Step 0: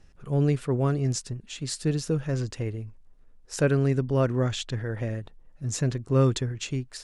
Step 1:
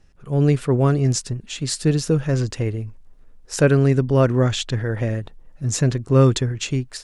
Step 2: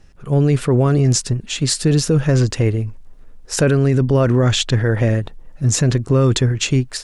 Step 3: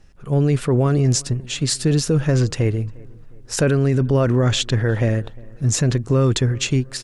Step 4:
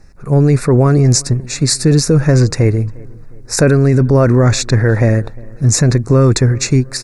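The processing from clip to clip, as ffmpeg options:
ffmpeg -i in.wav -af "dynaudnorm=framelen=240:gausssize=3:maxgain=7.5dB" out.wav
ffmpeg -i in.wav -af "alimiter=limit=-14dB:level=0:latency=1:release=16,volume=7dB" out.wav
ffmpeg -i in.wav -filter_complex "[0:a]asplit=2[link_01][link_02];[link_02]adelay=354,lowpass=frequency=2000:poles=1,volume=-24dB,asplit=2[link_03][link_04];[link_04]adelay=354,lowpass=frequency=2000:poles=1,volume=0.47,asplit=2[link_05][link_06];[link_06]adelay=354,lowpass=frequency=2000:poles=1,volume=0.47[link_07];[link_01][link_03][link_05][link_07]amix=inputs=4:normalize=0,volume=-2.5dB" out.wav
ffmpeg -i in.wav -af "asuperstop=centerf=3100:order=4:qfactor=2.1,apsyclip=11dB,volume=-3.5dB" out.wav

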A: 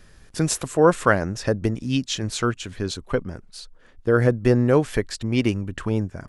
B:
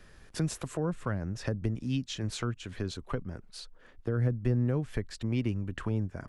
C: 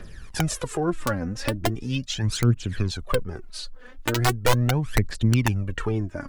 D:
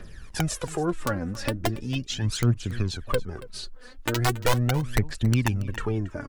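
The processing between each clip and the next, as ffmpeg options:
ffmpeg -i in.wav -filter_complex "[0:a]bass=frequency=250:gain=-3,treble=frequency=4000:gain=-5,acrossover=split=200[link_01][link_02];[link_02]acompressor=threshold=-34dB:ratio=5[link_03];[link_01][link_03]amix=inputs=2:normalize=0,volume=-2dB" out.wav
ffmpeg -i in.wav -af "aeval=exprs='(mod(9.44*val(0)+1,2)-1)/9.44':channel_layout=same,aphaser=in_gain=1:out_gain=1:delay=4.1:decay=0.67:speed=0.39:type=triangular,volume=6.5dB" out.wav
ffmpeg -i in.wav -filter_complex "[0:a]asplit=2[link_01][link_02];[link_02]volume=14dB,asoftclip=hard,volume=-14dB,volume=-5.5dB[link_03];[link_01][link_03]amix=inputs=2:normalize=0,aecho=1:1:279:0.126,volume=-5.5dB" out.wav

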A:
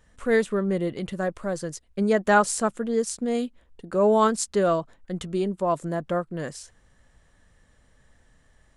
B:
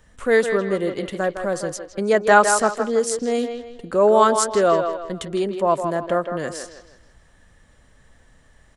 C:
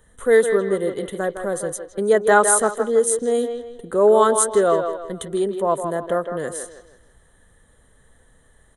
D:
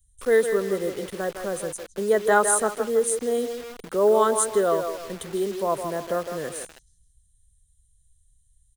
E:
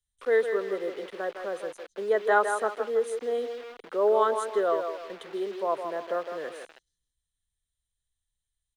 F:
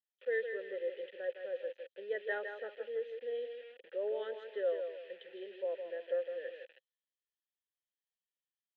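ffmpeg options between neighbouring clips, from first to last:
ffmpeg -i in.wav -filter_complex "[0:a]acrossover=split=290|5600[link_01][link_02][link_03];[link_01]acompressor=threshold=-39dB:ratio=6[link_04];[link_02]aecho=1:1:160|320|480|640:0.447|0.161|0.0579|0.0208[link_05];[link_04][link_05][link_03]amix=inputs=3:normalize=0,volume=5.5dB" out.wav
ffmpeg -i in.wav -af "superequalizer=7b=1.78:12b=0.355:14b=0.282:16b=3.55,volume=-2dB" out.wav
ffmpeg -i in.wav -filter_complex "[0:a]acrossover=split=110|4400[link_01][link_02][link_03];[link_01]aecho=1:1:310|620|930:0.126|0.0529|0.0222[link_04];[link_02]acrusher=bits=5:mix=0:aa=0.000001[link_05];[link_04][link_05][link_03]amix=inputs=3:normalize=0,volume=-4.5dB" out.wav
ffmpeg -i in.wav -filter_complex "[0:a]acrossover=split=310 4200:gain=0.0794 1 0.1[link_01][link_02][link_03];[link_01][link_02][link_03]amix=inputs=3:normalize=0,volume=-2.5dB" out.wav
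ffmpeg -i in.wav -filter_complex "[0:a]asplit=3[link_01][link_02][link_03];[link_01]bandpass=frequency=530:width_type=q:width=8,volume=0dB[link_04];[link_02]bandpass=frequency=1840:width_type=q:width=8,volume=-6dB[link_05];[link_03]bandpass=frequency=2480:width_type=q:width=8,volume=-9dB[link_06];[link_04][link_05][link_06]amix=inputs=3:normalize=0,highpass=120,equalizer=frequency=280:width_type=q:width=4:gain=-7,equalizer=frequency=450:width_type=q:width=4:gain=-4,equalizer=frequency=660:width_type=q:width=4:gain=-8,equalizer=frequency=1200:width_type=q:width=4:gain=-4,equalizer=frequency=3200:width_type=q:width=4:gain=8,lowpass=frequency=4400:width=0.5412,lowpass=frequency=4400:width=1.3066,volume=1.5dB" out.wav

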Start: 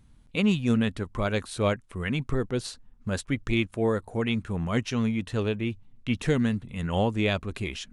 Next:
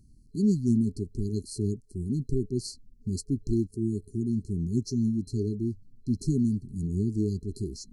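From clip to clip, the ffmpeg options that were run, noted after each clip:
ffmpeg -i in.wav -af "afftfilt=real='re*(1-between(b*sr/4096,420,4100))':imag='im*(1-between(b*sr/4096,420,4100))':win_size=4096:overlap=0.75" out.wav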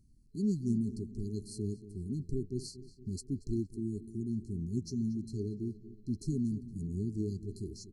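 ffmpeg -i in.wav -filter_complex "[0:a]asplit=2[link_01][link_02];[link_02]adelay=232,lowpass=frequency=3600:poles=1,volume=-14.5dB,asplit=2[link_03][link_04];[link_04]adelay=232,lowpass=frequency=3600:poles=1,volume=0.52,asplit=2[link_05][link_06];[link_06]adelay=232,lowpass=frequency=3600:poles=1,volume=0.52,asplit=2[link_07][link_08];[link_08]adelay=232,lowpass=frequency=3600:poles=1,volume=0.52,asplit=2[link_09][link_10];[link_10]adelay=232,lowpass=frequency=3600:poles=1,volume=0.52[link_11];[link_01][link_03][link_05][link_07][link_09][link_11]amix=inputs=6:normalize=0,volume=-7.5dB" out.wav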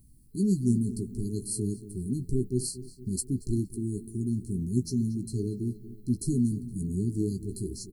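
ffmpeg -i in.wav -filter_complex "[0:a]aexciter=amount=4.6:drive=6.3:freq=8500,asplit=2[link_01][link_02];[link_02]adelay=16,volume=-8dB[link_03];[link_01][link_03]amix=inputs=2:normalize=0,volume=6dB" out.wav

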